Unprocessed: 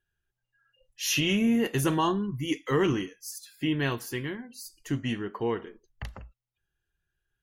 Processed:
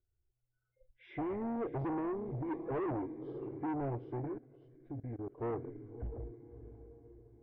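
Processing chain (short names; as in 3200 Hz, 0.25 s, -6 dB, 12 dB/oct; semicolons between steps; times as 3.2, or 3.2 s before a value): nonlinear frequency compression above 1200 Hz 1.5:1; EQ curve 120 Hz 0 dB, 190 Hz -20 dB, 290 Hz -3 dB, 490 Hz -7 dB, 940 Hz -25 dB; diffused feedback echo 0.606 s, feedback 43%, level -14.5 dB; 4.38–5.38 level quantiser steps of 21 dB; soft clip -37.5 dBFS, distortion -7 dB; LPF 2400 Hz 24 dB/oct; bell 740 Hz +9.5 dB 0.79 oct; gain +2.5 dB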